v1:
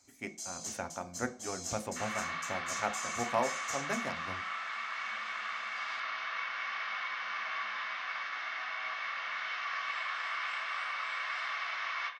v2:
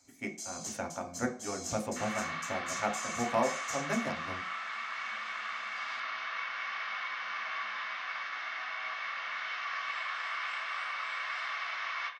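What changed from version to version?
speech: send +6.5 dB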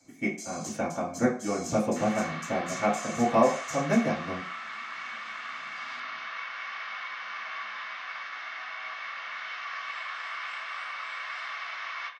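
speech: send +10.0 dB

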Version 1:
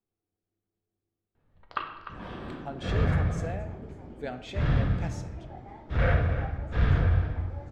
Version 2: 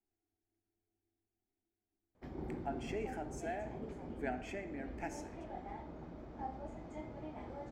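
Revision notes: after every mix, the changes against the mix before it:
speech: add phaser with its sweep stopped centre 770 Hz, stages 8
first sound: muted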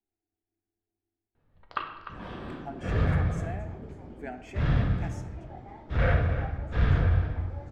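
first sound: unmuted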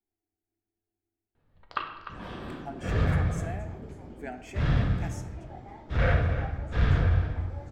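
master: add high-shelf EQ 5,900 Hz +10.5 dB

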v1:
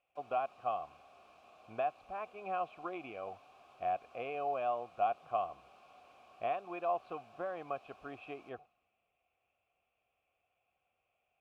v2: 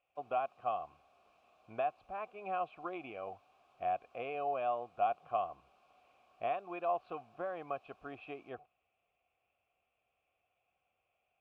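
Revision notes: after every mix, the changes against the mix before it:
background −8.0 dB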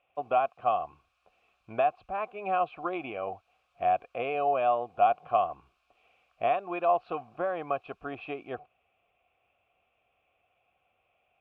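speech +9.0 dB
background: add high-pass filter 1,300 Hz 24 dB per octave

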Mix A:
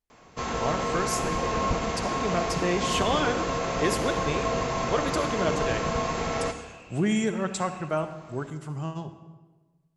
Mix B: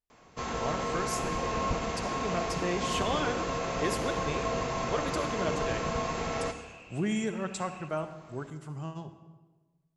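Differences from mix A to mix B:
speech −5.5 dB
first sound −4.0 dB

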